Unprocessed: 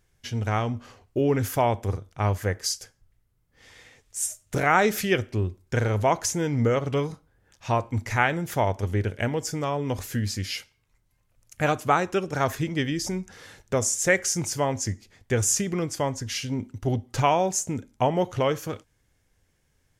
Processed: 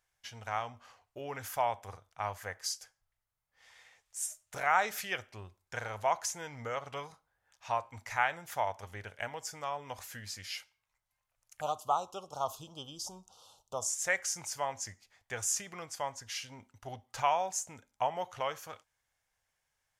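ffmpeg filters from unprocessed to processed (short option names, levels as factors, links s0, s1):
-filter_complex "[0:a]asettb=1/sr,asplit=3[s0][s1][s2];[s0]atrim=end=11.614[s3];[s1]atrim=start=11.61:end=13.9,asetpts=PTS-STARTPTS,afade=t=in:d=0.004:c=qsin,afade=t=out:st=2.286:d=0.004:c=qsin,asuperstop=centerf=1900:order=8:qfactor=1.1[s4];[s2]atrim=start=13.896[s5];[s3][s4]acrossfade=d=0.004:c1=hsin:c2=qsin[s6];[s6][s5]acrossfade=d=0.004:c1=qsin:c2=hsin,lowshelf=f=510:t=q:w=1.5:g=-13.5,volume=0.376"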